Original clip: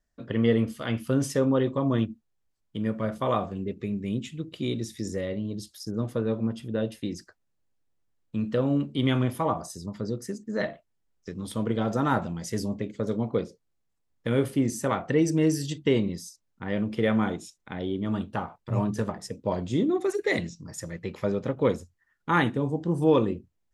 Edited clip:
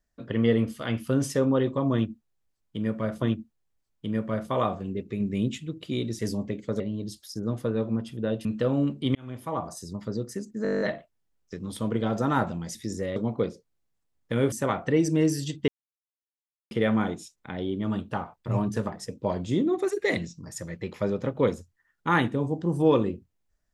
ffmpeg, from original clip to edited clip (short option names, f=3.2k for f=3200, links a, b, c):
-filter_complex "[0:a]asplit=22[a][b][c][d][e][f][g][h][i][j][k][l][m][n][o][p][q][r][s][t][u][v];[a]atrim=end=3.222[w];[b]atrim=start=1.928:end=3.912[x];[c]atrim=start=3.908:end=4.292,asetpts=PTS-STARTPTS,volume=3dB[y];[d]atrim=start=4.288:end=4.902[z];[e]atrim=start=12.498:end=13.112[aa];[f]atrim=start=5.308:end=6.962[ab];[g]atrim=start=8.378:end=9.08,asetpts=PTS-STARTPTS,afade=t=out:st=0.698:d=0.004:c=hsin[ac];[h]atrim=start=9.08:end=10.582,asetpts=PTS-STARTPTS,afade=t=in:d=0.66[ad];[i]atrim=start=10.558:end=10.582[ae];[j]atrim=start=10.558:end=10.582[af];[k]atrim=start=10.558:end=10.582[ag];[l]atrim=start=10.558:end=10.582[ah];[m]atrim=start=10.558:end=10.582[ai];[n]atrim=start=10.558:end=10.582[aj];[o]atrim=start=10.558:end=10.582[ak];[p]atrim=start=10.558:end=10.582[al];[q]atrim=start=10.558:end=12.502[am];[r]atrim=start=4.898:end=5.312[an];[s]atrim=start=13.108:end=14.472[ao];[t]atrim=start=14.738:end=15.9,asetpts=PTS-STARTPTS,afade=t=out:st=1.158:d=0.004:c=hsin[ap];[u]atrim=start=15.9:end=16.93,asetpts=PTS-STARTPTS,volume=0[aq];[v]atrim=start=16.93,asetpts=PTS-STARTPTS,afade=t=in:d=0.004:c=hsin[ar];[w][x]acrossfade=d=0.004:c1=hsin:c2=hsin[as];[as][y]acrossfade=d=0.004:c1=hsin:c2=hsin[at];[at][z]acrossfade=d=0.004:c1=hsin:c2=hsin[au];[au][aa]acrossfade=d=0.004:c1=hsin:c2=hsin[av];[av][ab]acrossfade=d=0.004:c1=hsin:c2=hsin[aw];[ac][ad]concat=n=2:v=0:a=1[ax];[aw][ax]acrossfade=d=0.004:c1=hsin:c2=hsin[ay];[ay][ae]acrossfade=d=0.004:c1=hsin:c2=hsin[az];[az][af]acrossfade=d=0.004:c1=hsin:c2=hsin[ba];[ba][ag]acrossfade=d=0.004:c1=hsin:c2=hsin[bb];[bb][ah]acrossfade=d=0.004:c1=hsin:c2=hsin[bc];[bc][ai]acrossfade=d=0.004:c1=hsin:c2=hsin[bd];[bd][aj]acrossfade=d=0.004:c1=hsin:c2=hsin[be];[be][ak]acrossfade=d=0.004:c1=hsin:c2=hsin[bf];[bf][al]acrossfade=d=0.004:c1=hsin:c2=hsin[bg];[bg][am]acrossfade=d=0.004:c1=hsin:c2=hsin[bh];[bh][an]acrossfade=d=0.004:c1=hsin:c2=hsin[bi];[bi][ao]acrossfade=d=0.004:c1=hsin:c2=hsin[bj];[ap][aq][ar]concat=n=3:v=0:a=1[bk];[bj][bk]acrossfade=d=0.004:c1=hsin:c2=hsin"